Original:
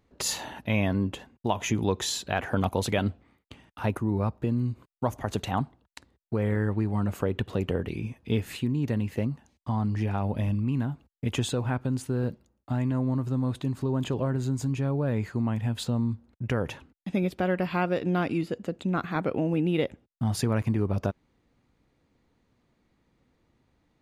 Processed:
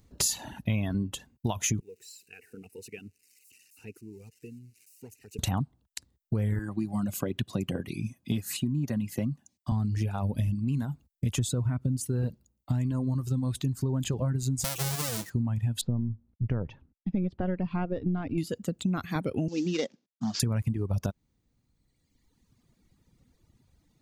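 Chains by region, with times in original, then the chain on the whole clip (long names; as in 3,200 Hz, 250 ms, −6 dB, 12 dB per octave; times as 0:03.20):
0:01.80–0:05.39: spike at every zero crossing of −27.5 dBFS + pair of resonant band-passes 1,100 Hz, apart 2.6 octaves + phaser with its sweep stopped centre 1,400 Hz, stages 4
0:06.59–0:09.72: high-pass filter 150 Hz + notch comb filter 450 Hz
0:11.39–0:12.01: low-shelf EQ 160 Hz +7 dB + notch comb filter 820 Hz
0:14.64–0:15.30: each half-wave held at its own peak + high-pass filter 440 Hz 6 dB per octave + comb filter 5.9 ms, depth 35%
0:15.81–0:18.38: gain on one half-wave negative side −3 dB + head-to-tape spacing loss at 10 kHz 45 dB
0:19.48–0:20.40: variable-slope delta modulation 32 kbit/s + high-pass filter 200 Hz 24 dB per octave + multiband upward and downward expander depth 40%
whole clip: reverb reduction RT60 1.7 s; bass and treble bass +11 dB, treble +15 dB; downward compressor, threshold −24 dBFS; level −1 dB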